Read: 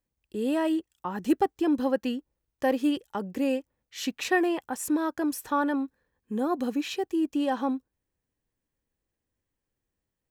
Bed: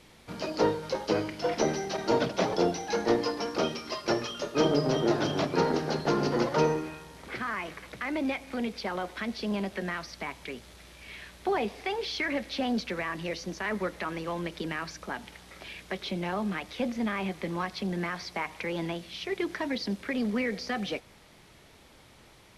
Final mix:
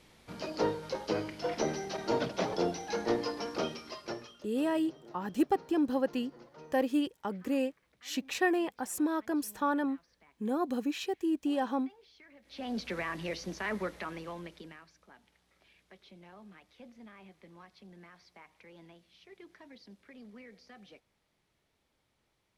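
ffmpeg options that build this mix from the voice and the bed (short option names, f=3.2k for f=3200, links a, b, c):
-filter_complex "[0:a]adelay=4100,volume=-4dB[a];[1:a]volume=19.5dB,afade=t=out:st=3.58:d=0.9:silence=0.0749894,afade=t=in:st=12.42:d=0.51:silence=0.0595662,afade=t=out:st=13.69:d=1.16:silence=0.112202[b];[a][b]amix=inputs=2:normalize=0"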